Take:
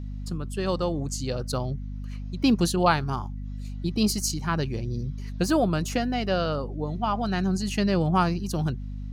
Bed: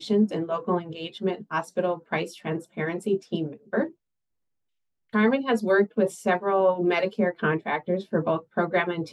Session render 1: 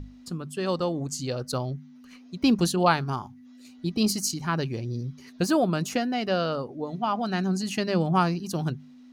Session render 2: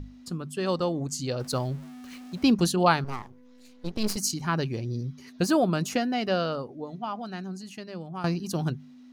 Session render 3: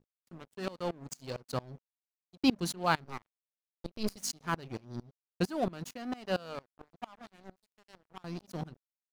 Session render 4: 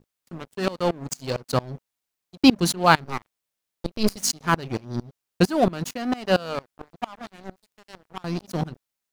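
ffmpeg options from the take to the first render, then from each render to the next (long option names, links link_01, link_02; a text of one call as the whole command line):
ffmpeg -i in.wav -af "bandreject=frequency=50:width_type=h:width=6,bandreject=frequency=100:width_type=h:width=6,bandreject=frequency=150:width_type=h:width=6,bandreject=frequency=200:width_type=h:width=6" out.wav
ffmpeg -i in.wav -filter_complex "[0:a]asettb=1/sr,asplit=3[link_01][link_02][link_03];[link_01]atrim=end=1.404[link_04];[link_02]atrim=start=1.4:end=2.43,asetpts=PTS-STARTPTS,afade=type=in:duration=0.004:curve=qsin,afade=type=out:start_time=1.026:duration=0.004:curve=qsin,aeval=exprs='val(0)+0.5*0.0075*sgn(val(0))':channel_layout=same[link_05];[link_03]atrim=start=2.426[link_06];[link_04][link_05]acrossfade=duration=0.004:curve1=hsin:curve2=qsin[link_07];[link_07][link_06]acrossfade=duration=0.004:curve1=qsin:curve2=hsin,asettb=1/sr,asplit=3[link_08][link_09][link_10];[link_08]atrim=end=3.044[link_11];[link_09]atrim=start=3.04:end=4.17,asetpts=PTS-STARTPTS,afade=type=in:duration=0.004:curve=qsin,afade=type=out:start_time=1.126:duration=0.004:curve=qsin,aeval=exprs='max(val(0),0)':channel_layout=same[link_12];[link_10]atrim=start=4.166[link_13];[link_11][link_12]acrossfade=duration=0.004:curve1=hsin:curve2=qsin[link_14];[link_14][link_13]acrossfade=duration=0.004:curve1=qsin:curve2=hsin,asplit=2[link_15][link_16];[link_15]atrim=end=8.24,asetpts=PTS-STARTPTS,afade=type=out:start_time=6.28:duration=1.96:curve=qua:silence=0.188365[link_17];[link_16]atrim=start=8.24,asetpts=PTS-STARTPTS,afade=type=in:duration=0.004:curve=hsin:silence=0.188365[link_18];[link_17][link_18]concat=n=2:v=0:a=1" out.wav
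ffmpeg -i in.wav -af "aeval=exprs='sgn(val(0))*max(abs(val(0))-0.0178,0)':channel_layout=same,aeval=exprs='val(0)*pow(10,-24*if(lt(mod(-4.4*n/s,1),2*abs(-4.4)/1000),1-mod(-4.4*n/s,1)/(2*abs(-4.4)/1000),(mod(-4.4*n/s,1)-2*abs(-4.4)/1000)/(1-2*abs(-4.4)/1000))/20)':channel_layout=same" out.wav
ffmpeg -i in.wav -af "volume=12dB,alimiter=limit=-2dB:level=0:latency=1" out.wav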